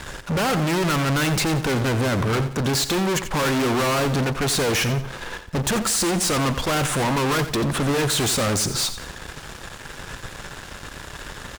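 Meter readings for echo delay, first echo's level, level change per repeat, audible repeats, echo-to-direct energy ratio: 88 ms, −12.0 dB, −9.0 dB, 3, −11.5 dB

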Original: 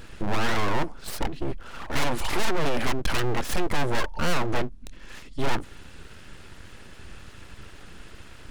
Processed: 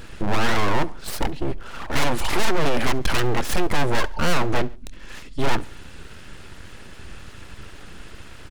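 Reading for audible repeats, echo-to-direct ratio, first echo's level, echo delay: 2, −22.0 dB, −23.0 dB, 69 ms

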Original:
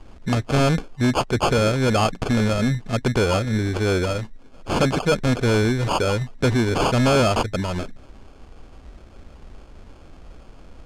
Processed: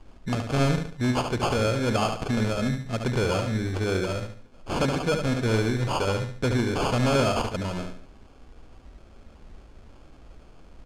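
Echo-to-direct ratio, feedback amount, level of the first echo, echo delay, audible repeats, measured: −5.5 dB, 35%, −6.0 dB, 72 ms, 4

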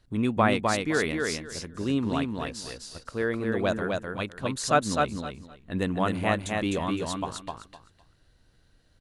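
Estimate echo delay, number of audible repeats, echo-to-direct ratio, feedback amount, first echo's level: 256 ms, 3, −3.5 dB, 20%, −3.5 dB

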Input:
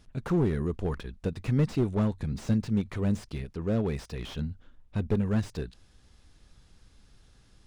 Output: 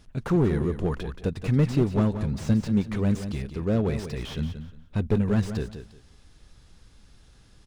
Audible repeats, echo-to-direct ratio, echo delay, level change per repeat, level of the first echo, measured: 2, −10.0 dB, 178 ms, −13.0 dB, −10.0 dB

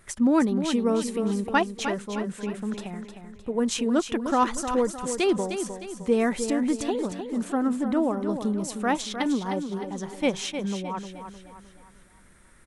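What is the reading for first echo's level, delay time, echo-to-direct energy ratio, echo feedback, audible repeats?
−8.5 dB, 307 ms, −7.5 dB, 43%, 4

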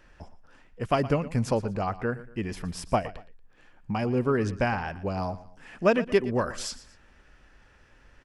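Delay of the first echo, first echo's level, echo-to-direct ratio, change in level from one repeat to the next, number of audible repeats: 117 ms, −16.5 dB, −16.0 dB, −9.0 dB, 2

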